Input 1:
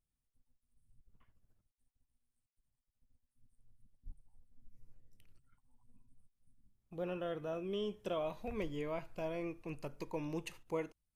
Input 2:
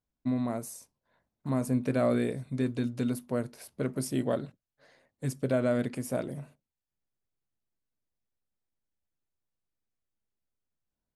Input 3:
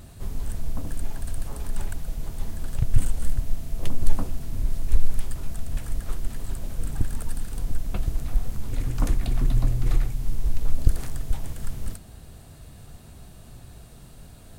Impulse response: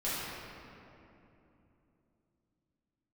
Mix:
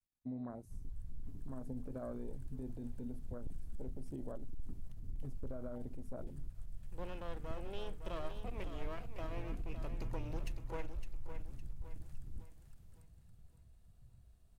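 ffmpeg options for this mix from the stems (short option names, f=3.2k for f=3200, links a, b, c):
-filter_complex "[0:a]aeval=exprs='max(val(0),0)':c=same,volume=-3dB,asplit=2[a][b];[b]volume=-9dB[c];[1:a]volume=-12dB[d];[2:a]volume=17dB,asoftclip=hard,volume=-17dB,adelay=500,volume=-15.5dB,asplit=2[e][f];[f]volume=-15.5dB[g];[d][e]amix=inputs=2:normalize=0,afwtdn=0.00562,alimiter=level_in=10.5dB:limit=-24dB:level=0:latency=1:release=104,volume=-10.5dB,volume=0dB[h];[c][g]amix=inputs=2:normalize=0,aecho=0:1:560|1120|1680|2240|2800|3360:1|0.4|0.16|0.064|0.0256|0.0102[i];[a][h][i]amix=inputs=3:normalize=0"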